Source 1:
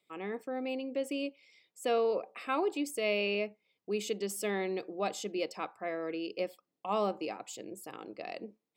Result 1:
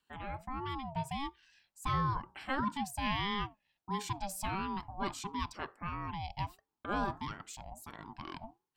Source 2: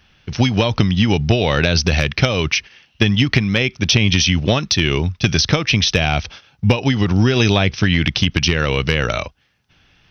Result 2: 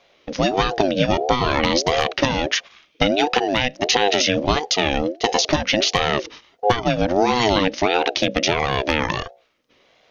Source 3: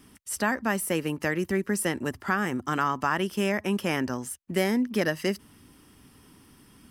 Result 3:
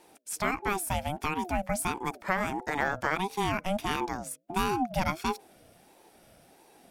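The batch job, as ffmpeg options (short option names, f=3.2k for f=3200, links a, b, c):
-af "bandreject=f=60:t=h:w=6,bandreject=f=120:t=h:w=6,bandreject=f=180:t=h:w=6,bandreject=f=240:t=h:w=6,aeval=exprs='val(0)*sin(2*PI*500*n/s+500*0.25/1.5*sin(2*PI*1.5*n/s))':c=same"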